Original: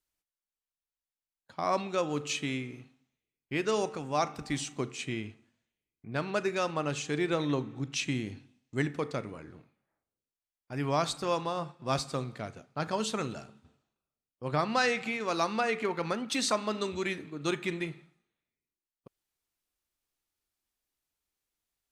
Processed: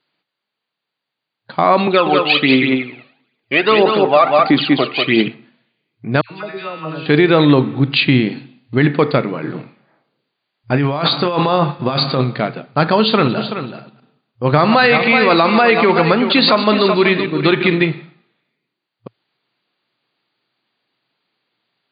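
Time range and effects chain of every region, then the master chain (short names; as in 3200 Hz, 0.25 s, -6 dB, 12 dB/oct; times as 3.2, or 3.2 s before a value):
1.87–5.28 phaser 1.5 Hz, delay 1.8 ms, feedback 66% + BPF 290–4900 Hz + echo 0.191 s -5.5 dB
6.21–7.06 resonator 160 Hz, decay 1.2 s, mix 90% + dispersion lows, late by 97 ms, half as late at 1400 Hz
9.43–12.21 negative-ratio compressor -36 dBFS + doubler 28 ms -12 dB
13–17.83 reverse delay 0.104 s, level -12 dB + echo 0.377 s -11 dB
whole clip: FFT band-pass 110–4800 Hz; maximiser +21.5 dB; gain -1 dB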